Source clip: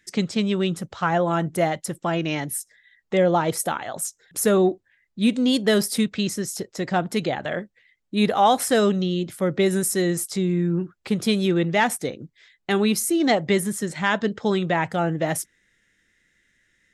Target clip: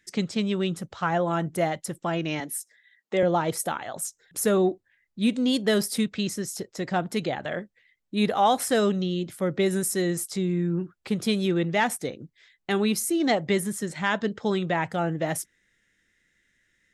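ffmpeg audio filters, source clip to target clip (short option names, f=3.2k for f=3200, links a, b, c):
-filter_complex "[0:a]asettb=1/sr,asplit=3[a][b][c];[a]atrim=end=2.404[d];[b]atrim=start=2.4:end=3.23,asetpts=PTS-STARTPTS,afade=t=in:d=0.004:c=qsin,afade=t=out:st=0.826:d=0.004:c=qsin,highpass=f=200:w=0.5412,highpass=f=200:w=1.3066[e];[c]atrim=start=3.226[f];[d][e]acrossfade=d=0.004:c1=hsin:c2=qsin[g];[g][f]acrossfade=d=0.004:c1=qsin:c2=hsin,volume=-3.5dB"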